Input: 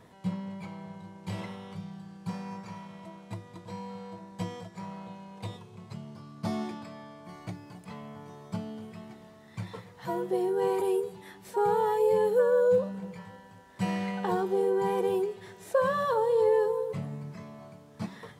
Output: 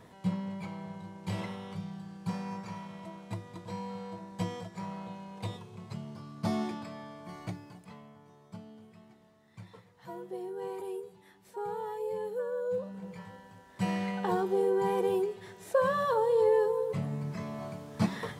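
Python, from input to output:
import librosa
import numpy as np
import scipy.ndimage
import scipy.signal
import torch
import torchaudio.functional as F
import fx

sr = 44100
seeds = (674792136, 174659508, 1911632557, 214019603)

y = fx.gain(x, sr, db=fx.line((7.46, 1.0), (8.19, -11.0), (12.64, -11.0), (13.2, -1.0), (16.71, -1.0), (17.65, 8.0)))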